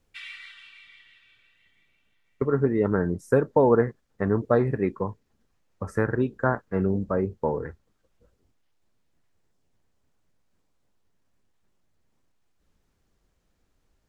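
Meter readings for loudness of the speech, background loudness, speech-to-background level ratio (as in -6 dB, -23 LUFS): -25.0 LUFS, -43.5 LUFS, 18.5 dB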